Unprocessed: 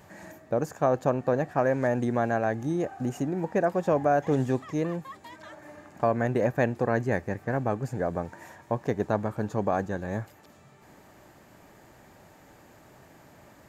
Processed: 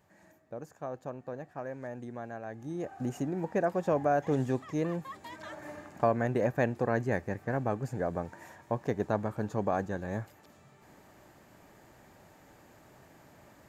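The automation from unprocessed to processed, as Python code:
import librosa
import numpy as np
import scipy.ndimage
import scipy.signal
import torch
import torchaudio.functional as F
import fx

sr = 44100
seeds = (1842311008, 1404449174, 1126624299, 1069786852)

y = fx.gain(x, sr, db=fx.line((2.44, -15.0), (3.01, -4.0), (4.64, -4.0), (5.69, 3.0), (6.2, -3.5)))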